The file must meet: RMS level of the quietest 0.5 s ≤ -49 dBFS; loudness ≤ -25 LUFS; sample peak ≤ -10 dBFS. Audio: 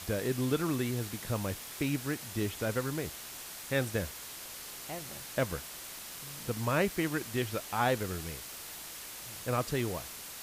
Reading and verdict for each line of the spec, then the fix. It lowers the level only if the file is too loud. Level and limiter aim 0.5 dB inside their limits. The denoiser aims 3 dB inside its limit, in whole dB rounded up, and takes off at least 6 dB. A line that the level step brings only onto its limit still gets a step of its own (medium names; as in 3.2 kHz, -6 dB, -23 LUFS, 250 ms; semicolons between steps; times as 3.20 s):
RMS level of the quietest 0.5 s -45 dBFS: fail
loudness -34.5 LUFS: pass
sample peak -16.0 dBFS: pass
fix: noise reduction 7 dB, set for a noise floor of -45 dBFS